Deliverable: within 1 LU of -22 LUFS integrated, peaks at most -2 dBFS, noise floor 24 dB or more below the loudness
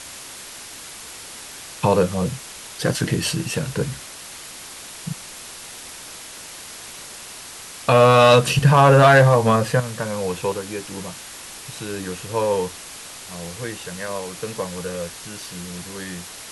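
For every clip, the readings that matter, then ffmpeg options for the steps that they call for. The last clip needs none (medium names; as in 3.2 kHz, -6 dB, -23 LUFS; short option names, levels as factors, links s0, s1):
noise floor -38 dBFS; noise floor target -43 dBFS; loudness -19.0 LUFS; peak level -2.5 dBFS; loudness target -22.0 LUFS
-> -af "afftdn=nr=6:nf=-38"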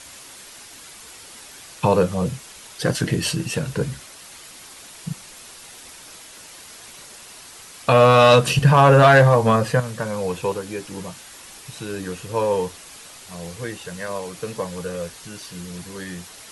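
noise floor -43 dBFS; loudness -19.0 LUFS; peak level -2.5 dBFS; loudness target -22.0 LUFS
-> -af "volume=0.708"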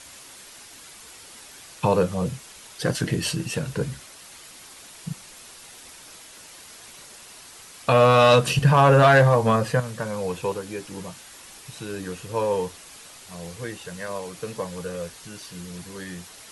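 loudness -22.0 LUFS; peak level -5.5 dBFS; noise floor -46 dBFS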